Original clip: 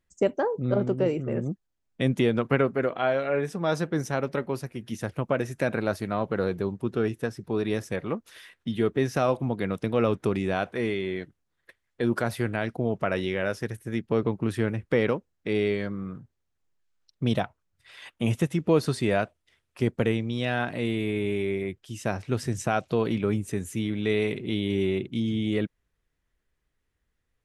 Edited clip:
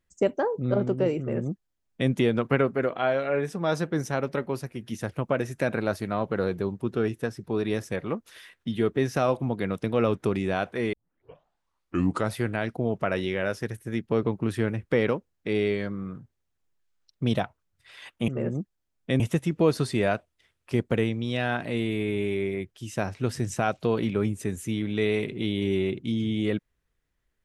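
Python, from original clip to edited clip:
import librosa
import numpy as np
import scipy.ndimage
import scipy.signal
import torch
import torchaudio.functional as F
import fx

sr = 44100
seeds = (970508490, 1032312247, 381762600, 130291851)

y = fx.edit(x, sr, fx.duplicate(start_s=1.19, length_s=0.92, to_s=18.28),
    fx.tape_start(start_s=10.93, length_s=1.43), tone=tone)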